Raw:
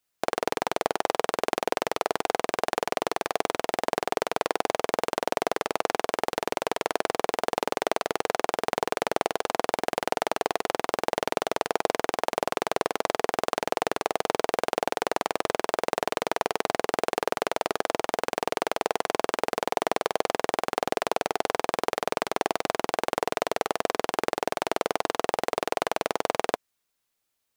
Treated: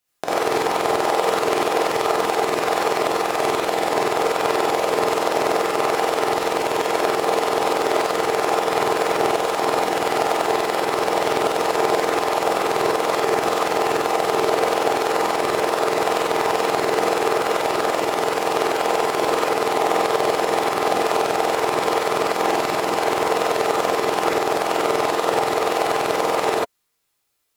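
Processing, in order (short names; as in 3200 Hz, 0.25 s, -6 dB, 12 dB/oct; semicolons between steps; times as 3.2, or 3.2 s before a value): wow and flutter 26 cents; non-linear reverb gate 0.11 s rising, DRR -7 dB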